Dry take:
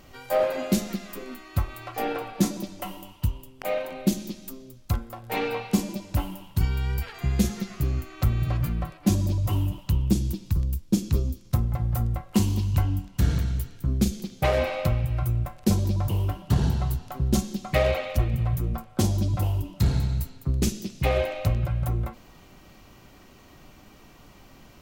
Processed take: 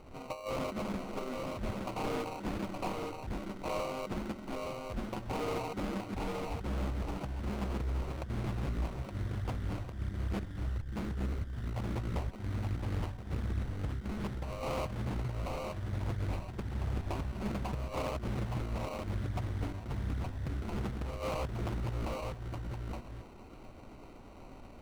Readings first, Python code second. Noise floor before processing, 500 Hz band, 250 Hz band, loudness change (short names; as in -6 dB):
-51 dBFS, -9.5 dB, -11.0 dB, -11.0 dB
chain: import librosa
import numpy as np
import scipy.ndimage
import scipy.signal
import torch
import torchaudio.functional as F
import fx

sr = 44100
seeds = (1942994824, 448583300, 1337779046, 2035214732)

p1 = fx.reverse_delay(x, sr, ms=205, wet_db=-13.5)
p2 = scipy.signal.sosfilt(scipy.signal.butter(4, 8400.0, 'lowpass', fs=sr, output='sos'), p1)
p3 = fx.peak_eq(p2, sr, hz=160.0, db=-8.5, octaves=0.39)
p4 = fx.over_compress(p3, sr, threshold_db=-28.0, ratio=-0.5)
p5 = fx.sample_hold(p4, sr, seeds[0], rate_hz=1700.0, jitter_pct=0)
p6 = 10.0 ** (-24.5 / 20.0) * (np.abs((p5 / 10.0 ** (-24.5 / 20.0) + 3.0) % 4.0 - 2.0) - 1.0)
p7 = fx.high_shelf(p6, sr, hz=3900.0, db=-8.5)
p8 = p7 + fx.echo_single(p7, sr, ms=869, db=-4.0, dry=0)
p9 = fx.doppler_dist(p8, sr, depth_ms=0.65)
y = p9 * librosa.db_to_amplitude(-5.0)